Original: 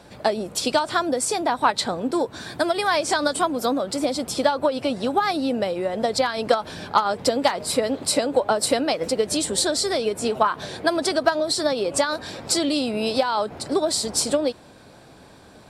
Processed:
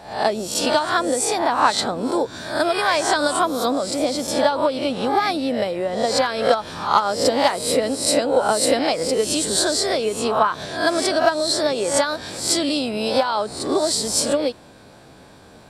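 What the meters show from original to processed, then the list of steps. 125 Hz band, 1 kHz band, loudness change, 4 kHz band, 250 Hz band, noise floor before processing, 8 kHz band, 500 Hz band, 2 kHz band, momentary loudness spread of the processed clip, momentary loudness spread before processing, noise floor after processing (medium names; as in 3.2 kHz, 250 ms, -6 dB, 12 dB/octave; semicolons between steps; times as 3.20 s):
+2.0 dB, +3.0 dB, +2.5 dB, +3.0 dB, +1.5 dB, -48 dBFS, +3.5 dB, +2.5 dB, +3.0 dB, 5 LU, 4 LU, -46 dBFS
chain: reverse spectral sustain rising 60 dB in 0.51 s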